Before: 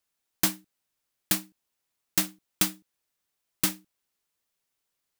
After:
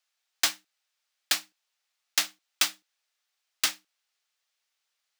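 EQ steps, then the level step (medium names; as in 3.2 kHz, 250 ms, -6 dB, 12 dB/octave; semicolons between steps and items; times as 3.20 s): three-band isolator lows -21 dB, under 520 Hz, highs -17 dB, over 6.3 kHz; tilt EQ +2 dB/octave; band-stop 1 kHz, Q 12; +2.5 dB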